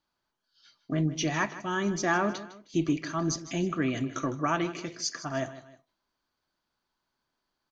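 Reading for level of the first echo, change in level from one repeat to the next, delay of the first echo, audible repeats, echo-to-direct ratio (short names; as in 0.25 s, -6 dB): -15.0 dB, -8.0 dB, 0.156 s, 2, -14.5 dB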